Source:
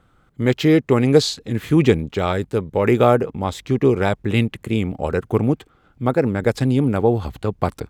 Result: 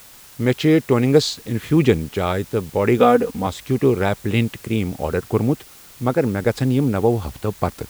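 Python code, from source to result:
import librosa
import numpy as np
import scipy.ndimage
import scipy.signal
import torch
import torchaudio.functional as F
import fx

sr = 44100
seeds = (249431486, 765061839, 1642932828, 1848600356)

p1 = fx.comb(x, sr, ms=4.1, depth=0.75, at=(2.98, 3.47))
p2 = fx.quant_dither(p1, sr, seeds[0], bits=6, dither='triangular')
p3 = p1 + F.gain(torch.from_numpy(p2), -3.5).numpy()
y = F.gain(torch.from_numpy(p3), -5.0).numpy()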